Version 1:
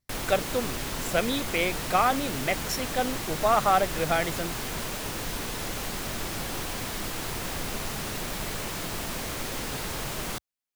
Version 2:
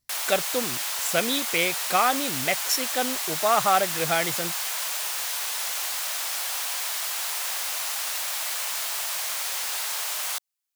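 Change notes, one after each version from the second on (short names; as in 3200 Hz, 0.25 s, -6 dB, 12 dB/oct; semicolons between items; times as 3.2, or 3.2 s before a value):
background: add HPF 680 Hz 24 dB/oct; master: add high shelf 2900 Hz +9 dB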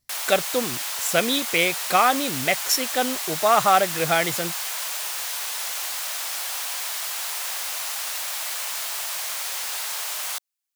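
speech +3.5 dB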